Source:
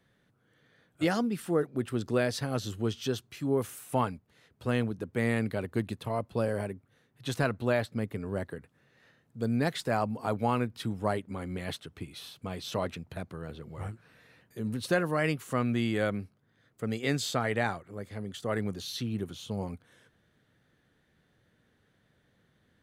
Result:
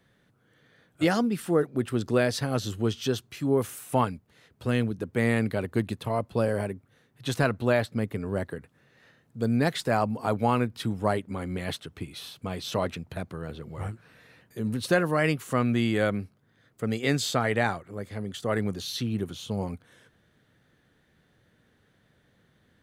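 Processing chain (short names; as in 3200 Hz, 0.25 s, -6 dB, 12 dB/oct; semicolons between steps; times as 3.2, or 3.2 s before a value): 4.04–5.01 dynamic EQ 880 Hz, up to -6 dB, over -46 dBFS, Q 1; gain +4 dB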